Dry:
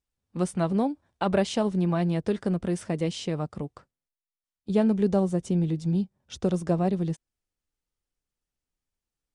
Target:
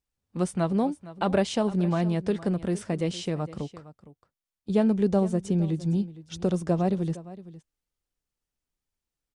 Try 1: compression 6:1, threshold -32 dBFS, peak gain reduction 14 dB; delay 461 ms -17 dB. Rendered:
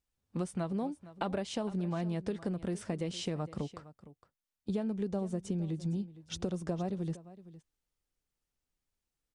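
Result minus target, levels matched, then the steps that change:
compression: peak gain reduction +14 dB
remove: compression 6:1, threshold -32 dBFS, peak gain reduction 14 dB

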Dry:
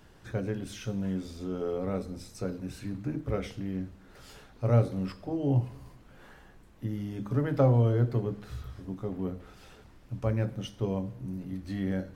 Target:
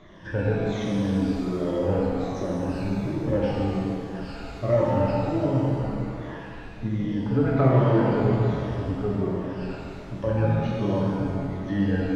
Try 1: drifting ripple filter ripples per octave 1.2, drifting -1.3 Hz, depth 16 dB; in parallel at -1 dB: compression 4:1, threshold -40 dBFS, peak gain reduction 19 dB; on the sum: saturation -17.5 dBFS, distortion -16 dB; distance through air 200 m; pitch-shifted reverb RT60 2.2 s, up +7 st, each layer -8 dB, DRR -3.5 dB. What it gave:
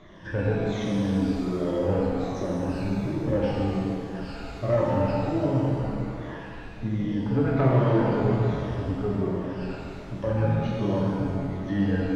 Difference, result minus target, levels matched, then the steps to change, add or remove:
saturation: distortion +10 dB
change: saturation -11 dBFS, distortion -26 dB

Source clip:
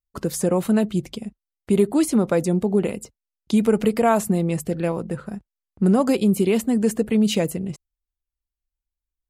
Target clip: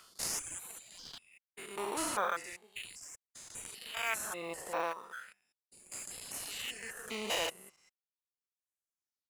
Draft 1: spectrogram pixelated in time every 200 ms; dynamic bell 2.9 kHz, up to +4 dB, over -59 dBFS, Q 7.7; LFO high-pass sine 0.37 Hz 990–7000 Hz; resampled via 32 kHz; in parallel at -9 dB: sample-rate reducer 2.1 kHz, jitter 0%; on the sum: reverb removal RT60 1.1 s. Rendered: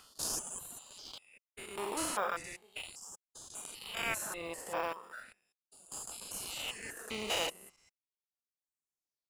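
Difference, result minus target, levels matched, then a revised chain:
sample-rate reducer: distortion +5 dB
spectrogram pixelated in time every 200 ms; dynamic bell 2.9 kHz, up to +4 dB, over -59 dBFS, Q 7.7; LFO high-pass sine 0.37 Hz 990–7000 Hz; resampled via 32 kHz; in parallel at -9 dB: sample-rate reducer 4.8 kHz, jitter 0%; on the sum: reverb removal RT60 1.1 s

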